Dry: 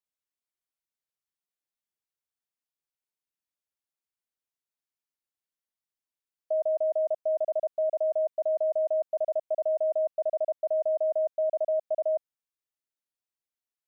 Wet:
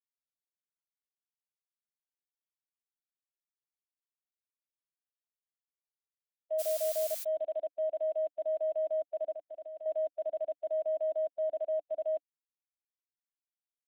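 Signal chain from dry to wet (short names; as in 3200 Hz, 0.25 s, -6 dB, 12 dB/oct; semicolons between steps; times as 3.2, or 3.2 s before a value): per-bin expansion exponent 2; in parallel at -9 dB: bit-crush 7-bit; on the sum: downsampling 8000 Hz; 6.58–7.23 added noise blue -36 dBFS; 9.31–9.86 level quantiser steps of 16 dB; bell 300 Hz +8.5 dB 0.35 oct; three-band expander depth 40%; gain -7.5 dB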